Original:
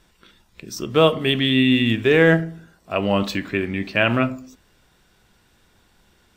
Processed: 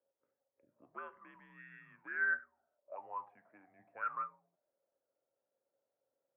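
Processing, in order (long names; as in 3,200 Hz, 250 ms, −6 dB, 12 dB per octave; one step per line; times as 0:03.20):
0:02.39–0:03.79: low-shelf EQ 330 Hz −9.5 dB
single-sideband voice off tune −85 Hz 170–2,300 Hz
envelope filter 540–1,500 Hz, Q 14, up, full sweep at −14 dBFS
level −7 dB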